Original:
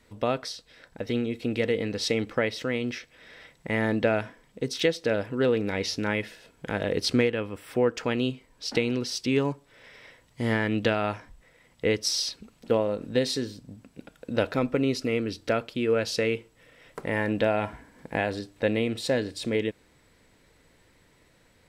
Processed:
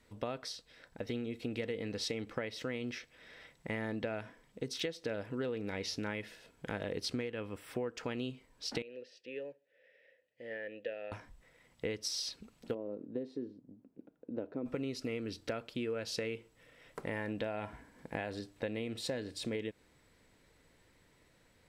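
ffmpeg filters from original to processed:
ffmpeg -i in.wav -filter_complex "[0:a]asettb=1/sr,asplit=3[link_01][link_02][link_03];[link_01]atrim=end=8.824[link_04];[link_02]atrim=start=8.82:end=11.12,asetpts=PTS-STARTPTS,afade=type=in:duration=0.004:curve=qsin,afade=type=out:start_time=2.296:duration=0.004:curve=qsin,asplit=3[link_05][link_06][link_07];[link_05]bandpass=frequency=530:width_type=q:width=8,volume=0dB[link_08];[link_06]bandpass=frequency=1840:width_type=q:width=8,volume=-6dB[link_09];[link_07]bandpass=frequency=2480:width_type=q:width=8,volume=-9dB[link_10];[link_08][link_09][link_10]amix=inputs=3:normalize=0[link_11];[link_03]atrim=start=11.116[link_12];[link_04][link_11]acrossfade=duration=0.004:curve1=hsin:curve2=qsin[link_13];[link_13][link_12]acrossfade=duration=0.004:curve1=qsin:curve2=hsin,asplit=3[link_14][link_15][link_16];[link_14]afade=type=out:start_time=12.73:duration=0.02[link_17];[link_15]bandpass=frequency=320:width_type=q:width=1.7,afade=type=in:start_time=12.73:duration=0.02,afade=type=out:start_time=14.65:duration=0.02[link_18];[link_16]afade=type=in:start_time=14.65:duration=0.02[link_19];[link_17][link_18][link_19]amix=inputs=3:normalize=0,acompressor=threshold=-28dB:ratio=6,volume=-6dB" out.wav

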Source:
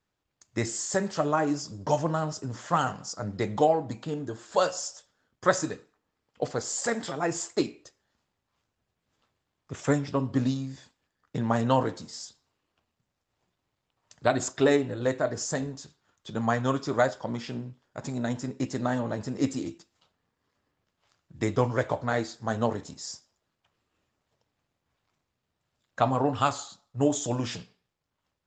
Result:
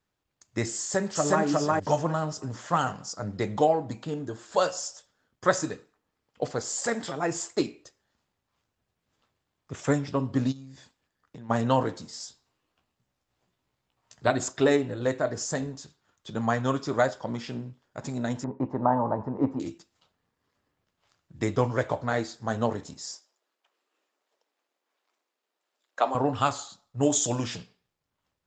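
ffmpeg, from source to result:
ffmpeg -i in.wav -filter_complex "[0:a]asplit=2[link_01][link_02];[link_02]afade=type=in:start_time=0.79:duration=0.01,afade=type=out:start_time=1.43:duration=0.01,aecho=0:1:360|720|1080:1|0.2|0.04[link_03];[link_01][link_03]amix=inputs=2:normalize=0,asplit=3[link_04][link_05][link_06];[link_04]afade=type=out:start_time=10.51:duration=0.02[link_07];[link_05]acompressor=threshold=-45dB:ratio=3:attack=3.2:release=140:knee=1:detection=peak,afade=type=in:start_time=10.51:duration=0.02,afade=type=out:start_time=11.49:duration=0.02[link_08];[link_06]afade=type=in:start_time=11.49:duration=0.02[link_09];[link_07][link_08][link_09]amix=inputs=3:normalize=0,asettb=1/sr,asplit=3[link_10][link_11][link_12];[link_10]atrim=end=12.184[link_13];[link_11]atrim=start=12.18:end=14.3,asetpts=PTS-STARTPTS,afade=type=in:duration=0.004:curve=qsin,afade=type=out:start_time=2.116:duration=0.004:curve=qsin,asplit=2[link_14][link_15];[link_15]adelay=16,volume=-5.5dB[link_16];[link_14][link_16]amix=inputs=2:normalize=0,atrim=end_sample=93492[link_17];[link_12]atrim=start=14.296[link_18];[link_13][link_17]acrossfade=duration=0.004:curve1=hsin:curve2=qsin[link_19];[link_19][link_18]acrossfade=duration=0.004:curve1=qsin:curve2=hsin,asettb=1/sr,asplit=3[link_20][link_21][link_22];[link_20]atrim=end=18.444[link_23];[link_21]atrim=start=18.44:end=19.6,asetpts=PTS-STARTPTS,afade=type=in:duration=0.004:curve=qsin,afade=type=out:start_time=1.156:duration=0.004:curve=qsin,lowpass=frequency=940:width_type=q:width=4.8[link_24];[link_22]atrim=start=19.596[link_25];[link_23][link_24]acrossfade=duration=0.004:curve1=hsin:curve2=qsin[link_26];[link_26][link_25]acrossfade=duration=0.004:curve1=qsin:curve2=hsin,asettb=1/sr,asplit=3[link_27][link_28][link_29];[link_27]atrim=end=23.124[link_30];[link_28]atrim=start=23.12:end=26.15,asetpts=PTS-STARTPTS,afade=type=in:duration=0.004:curve=qsin,afade=type=out:start_time=3.026:duration=0.004:curve=qsin,highpass=frequency=330:width=0.5412,highpass=frequency=330:width=1.3066[link_31];[link_29]atrim=start=26.146[link_32];[link_30][link_31]acrossfade=duration=0.004:curve1=hsin:curve2=qsin[link_33];[link_33][link_32]acrossfade=duration=0.004:curve1=qsin:curve2=hsin,asettb=1/sr,asplit=3[link_34][link_35][link_36];[link_34]atrim=end=27.034[link_37];[link_35]atrim=start=27.03:end=27.44,asetpts=PTS-STARTPTS,afade=type=in:duration=0.004:curve=qsin,afade=type=out:start_time=0.406:duration=0.004:curve=qsin,highshelf=frequency=2600:gain=9[link_38];[link_36]atrim=start=27.436[link_39];[link_37][link_38]acrossfade=duration=0.004:curve1=hsin:curve2=qsin[link_40];[link_40][link_39]acrossfade=duration=0.004:curve1=qsin:curve2=hsin" out.wav

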